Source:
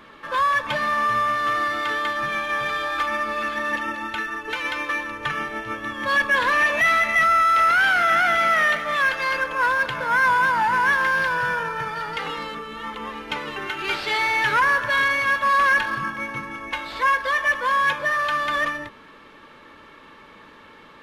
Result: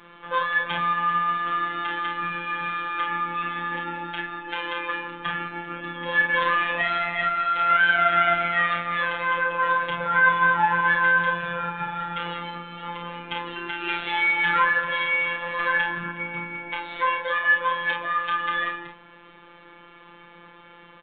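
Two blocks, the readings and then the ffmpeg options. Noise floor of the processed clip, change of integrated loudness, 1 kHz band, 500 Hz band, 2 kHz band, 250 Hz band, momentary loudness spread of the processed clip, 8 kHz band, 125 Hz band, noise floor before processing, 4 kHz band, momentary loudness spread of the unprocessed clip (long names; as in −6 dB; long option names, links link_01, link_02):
−49 dBFS, −2.5 dB, −2.5 dB, −3.0 dB, −2.5 dB, −2.0 dB, 13 LU, below −40 dB, +1.0 dB, −47 dBFS, −3.0 dB, 12 LU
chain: -af "aecho=1:1:31|50:0.631|0.473,afftfilt=real='hypot(re,im)*cos(PI*b)':imag='0':win_size=1024:overlap=0.75,aresample=8000,aresample=44100"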